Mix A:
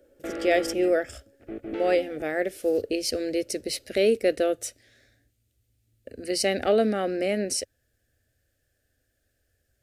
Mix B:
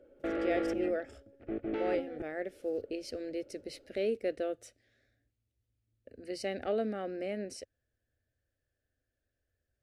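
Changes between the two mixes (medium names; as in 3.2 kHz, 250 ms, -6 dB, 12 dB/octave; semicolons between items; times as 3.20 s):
speech -10.5 dB; master: add low-pass 2.5 kHz 6 dB/octave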